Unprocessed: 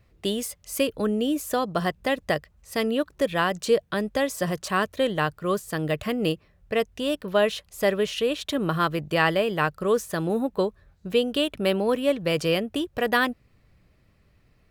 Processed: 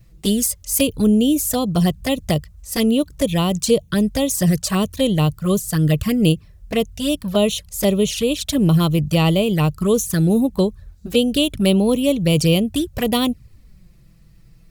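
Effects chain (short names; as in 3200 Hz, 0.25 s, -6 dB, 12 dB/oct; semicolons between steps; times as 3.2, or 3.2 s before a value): envelope flanger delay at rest 6.3 ms, full sweep at -21 dBFS; tone controls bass +14 dB, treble +14 dB; gain +3.5 dB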